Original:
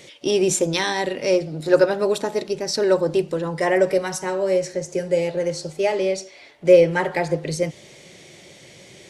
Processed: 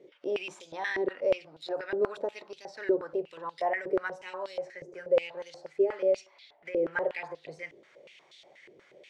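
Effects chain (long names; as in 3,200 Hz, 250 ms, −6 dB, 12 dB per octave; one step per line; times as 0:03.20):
brickwall limiter −13 dBFS, peak gain reduction 10.5 dB
band-pass on a step sequencer 8.3 Hz 390–3,700 Hz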